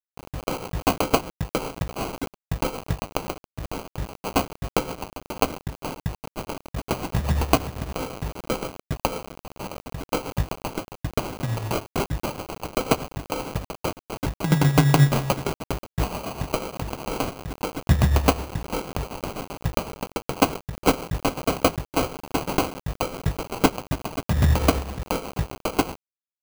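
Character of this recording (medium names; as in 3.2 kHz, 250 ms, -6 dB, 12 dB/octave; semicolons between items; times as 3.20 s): a quantiser's noise floor 6-bit, dither none; tremolo triangle 8 Hz, depth 65%; aliases and images of a low sample rate 1.8 kHz, jitter 0%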